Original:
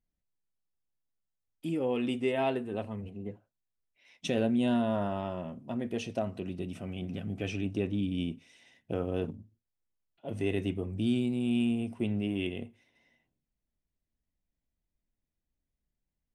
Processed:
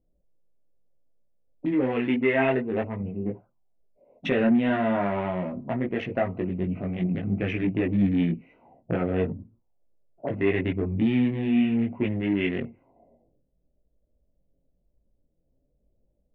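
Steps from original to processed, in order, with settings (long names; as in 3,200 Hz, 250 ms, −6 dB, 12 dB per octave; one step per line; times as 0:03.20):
adaptive Wiener filter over 25 samples
in parallel at +2.5 dB: downward compressor, threshold −40 dBFS, peak gain reduction 15.5 dB
on the sum: multi-voice chorus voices 6, 0.52 Hz, delay 19 ms, depth 3.8 ms
soft clipping −20 dBFS, distortion −24 dB
envelope-controlled low-pass 540–2,000 Hz up, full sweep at −38 dBFS
level +7.5 dB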